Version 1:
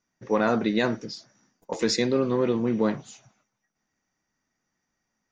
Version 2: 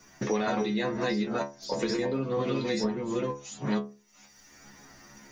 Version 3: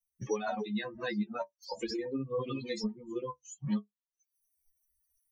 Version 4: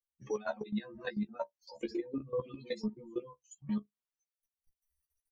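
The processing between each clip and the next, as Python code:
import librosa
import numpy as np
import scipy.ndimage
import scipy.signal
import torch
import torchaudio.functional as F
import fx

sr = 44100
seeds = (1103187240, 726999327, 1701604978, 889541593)

y1 = fx.reverse_delay(x, sr, ms=473, wet_db=0.0)
y1 = fx.stiff_resonator(y1, sr, f0_hz=68.0, decay_s=0.33, stiffness=0.002)
y1 = fx.band_squash(y1, sr, depth_pct=100)
y1 = y1 * librosa.db_to_amplitude(2.5)
y2 = fx.bin_expand(y1, sr, power=3.0)
y3 = fx.high_shelf(y2, sr, hz=5900.0, db=-8.5)
y3 = fx.level_steps(y3, sr, step_db=17)
y3 = fx.doubler(y3, sr, ms=14.0, db=-7)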